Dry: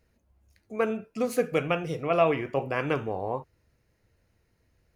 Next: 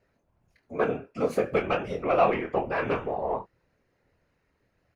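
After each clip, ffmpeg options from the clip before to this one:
-filter_complex "[0:a]asplit=2[s0][s1];[s1]highpass=f=720:p=1,volume=3.55,asoftclip=type=tanh:threshold=0.335[s2];[s0][s2]amix=inputs=2:normalize=0,lowpass=f=1300:p=1,volume=0.501,afftfilt=real='hypot(re,im)*cos(2*PI*random(0))':imag='hypot(re,im)*sin(2*PI*random(1))':win_size=512:overlap=0.75,asplit=2[s3][s4];[s4]adelay=25,volume=0.398[s5];[s3][s5]amix=inputs=2:normalize=0,volume=1.88"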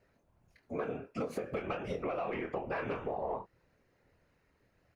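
-af "alimiter=limit=0.119:level=0:latency=1:release=175,acompressor=threshold=0.0224:ratio=6"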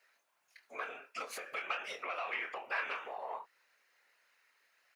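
-af "highpass=1500,volume=2.51"

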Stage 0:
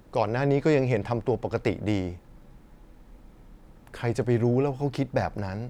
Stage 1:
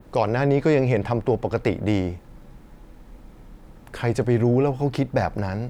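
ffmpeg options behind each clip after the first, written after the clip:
-filter_complex "[0:a]adynamicequalizer=threshold=0.00282:dfrequency=6200:dqfactor=0.81:tfrequency=6200:tqfactor=0.81:attack=5:release=100:ratio=0.375:range=2:mode=cutabove:tftype=bell,asplit=2[s0][s1];[s1]alimiter=limit=0.126:level=0:latency=1,volume=0.891[s2];[s0][s2]amix=inputs=2:normalize=0"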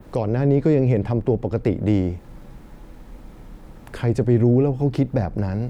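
-filter_complex "[0:a]acrossover=split=460[s0][s1];[s1]acompressor=threshold=0.00794:ratio=2.5[s2];[s0][s2]amix=inputs=2:normalize=0,volume=1.58"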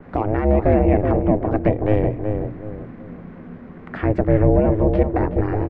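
-filter_complex "[0:a]aeval=exprs='val(0)*sin(2*PI*210*n/s)':c=same,lowpass=f=1900:t=q:w=1.9,asplit=2[s0][s1];[s1]adelay=375,lowpass=f=1100:p=1,volume=0.596,asplit=2[s2][s3];[s3]adelay=375,lowpass=f=1100:p=1,volume=0.36,asplit=2[s4][s5];[s5]adelay=375,lowpass=f=1100:p=1,volume=0.36,asplit=2[s6][s7];[s7]adelay=375,lowpass=f=1100:p=1,volume=0.36,asplit=2[s8][s9];[s9]adelay=375,lowpass=f=1100:p=1,volume=0.36[s10];[s0][s2][s4][s6][s8][s10]amix=inputs=6:normalize=0,volume=1.5"

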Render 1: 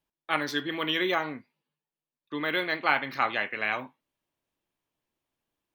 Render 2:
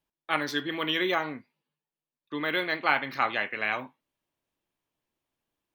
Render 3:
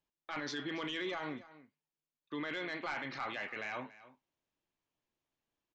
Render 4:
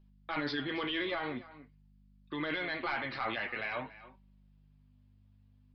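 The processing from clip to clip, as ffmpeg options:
-af anull
-af "aresample=16000,asoftclip=type=tanh:threshold=0.133,aresample=44100,alimiter=level_in=1.33:limit=0.0631:level=0:latency=1:release=11,volume=0.75,aecho=1:1:283:0.133,volume=0.596"
-af "aeval=exprs='val(0)+0.000631*(sin(2*PI*50*n/s)+sin(2*PI*2*50*n/s)/2+sin(2*PI*3*50*n/s)/3+sin(2*PI*4*50*n/s)/4+sin(2*PI*5*50*n/s)/5)':c=same,flanger=delay=5.2:depth=3.9:regen=35:speed=0.47:shape=sinusoidal,aresample=11025,aresample=44100,volume=2.51"

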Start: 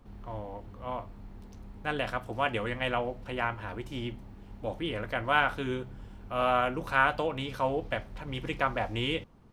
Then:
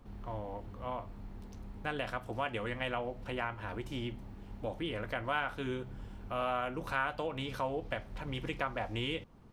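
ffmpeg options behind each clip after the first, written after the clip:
-af "acompressor=threshold=0.0158:ratio=2"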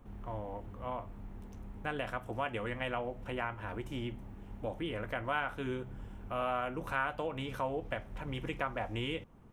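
-af "equalizer=f=4500:w=2.1:g=-10"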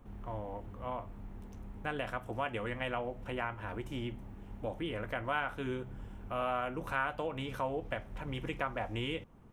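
-af anull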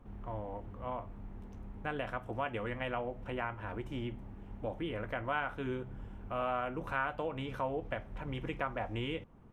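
-af "highshelf=f=4900:g=-11"

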